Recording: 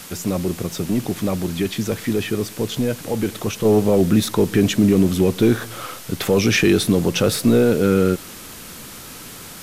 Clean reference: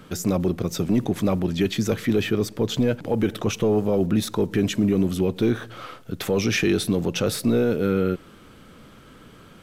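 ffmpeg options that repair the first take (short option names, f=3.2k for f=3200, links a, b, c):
-af "afwtdn=0.014,asetnsamples=n=441:p=0,asendcmd='3.65 volume volume -5.5dB',volume=0dB"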